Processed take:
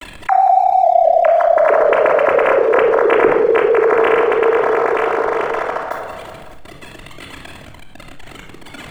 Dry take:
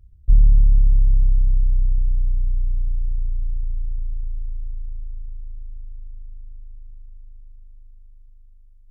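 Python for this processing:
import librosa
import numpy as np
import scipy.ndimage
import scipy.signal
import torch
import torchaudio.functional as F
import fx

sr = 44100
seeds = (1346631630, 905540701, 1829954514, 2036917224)

y = fx.sine_speech(x, sr)
y = fx.backlash(y, sr, play_db=-38.0)
y = fx.mod_noise(y, sr, seeds[0], snr_db=22, at=(5.82, 6.58))
y = fx.echo_feedback(y, sr, ms=186, feedback_pct=47, wet_db=-18.5)
y = fx.room_shoebox(y, sr, seeds[1], volume_m3=2500.0, walls='furnished', distance_m=3.0)
y = fx.env_flatten(y, sr, amount_pct=50)
y = y * librosa.db_to_amplitude(-2.5)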